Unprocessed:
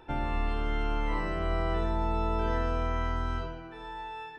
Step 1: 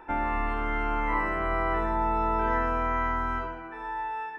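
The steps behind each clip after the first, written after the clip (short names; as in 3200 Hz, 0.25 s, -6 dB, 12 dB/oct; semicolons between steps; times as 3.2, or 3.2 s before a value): graphic EQ 125/250/1000/2000/4000 Hz -10/+6/+9/+10/-11 dB; gain -1.5 dB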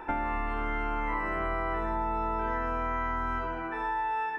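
compressor 6:1, threshold -34 dBFS, peak gain reduction 11.5 dB; gain +6 dB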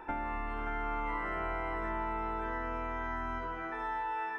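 thinning echo 0.58 s, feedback 46%, high-pass 760 Hz, level -4 dB; gain -5.5 dB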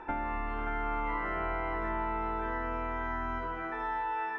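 air absorption 77 m; gain +2.5 dB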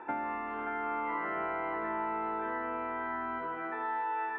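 BPF 200–2600 Hz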